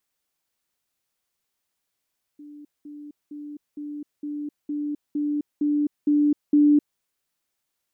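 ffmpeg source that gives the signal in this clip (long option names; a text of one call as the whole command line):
ffmpeg -f lavfi -i "aevalsrc='pow(10,(-40+3*floor(t/0.46))/20)*sin(2*PI*294*t)*clip(min(mod(t,0.46),0.26-mod(t,0.46))/0.005,0,1)':duration=4.6:sample_rate=44100" out.wav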